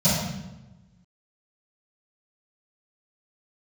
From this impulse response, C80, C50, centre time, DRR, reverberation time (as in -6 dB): 2.5 dB, -0.5 dB, 76 ms, -16.5 dB, 1.0 s